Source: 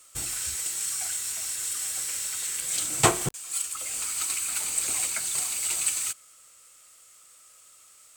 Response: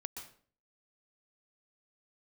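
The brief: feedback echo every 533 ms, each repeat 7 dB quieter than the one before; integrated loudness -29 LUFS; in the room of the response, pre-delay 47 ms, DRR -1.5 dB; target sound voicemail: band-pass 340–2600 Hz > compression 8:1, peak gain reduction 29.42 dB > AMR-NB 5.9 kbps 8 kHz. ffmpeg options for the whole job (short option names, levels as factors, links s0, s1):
-filter_complex "[0:a]aecho=1:1:533|1066|1599|2132|2665:0.447|0.201|0.0905|0.0407|0.0183,asplit=2[s0][s1];[1:a]atrim=start_sample=2205,adelay=47[s2];[s1][s2]afir=irnorm=-1:irlink=0,volume=1.5[s3];[s0][s3]amix=inputs=2:normalize=0,highpass=340,lowpass=2600,acompressor=threshold=0.00398:ratio=8,volume=21.1" -ar 8000 -c:a libopencore_amrnb -b:a 5900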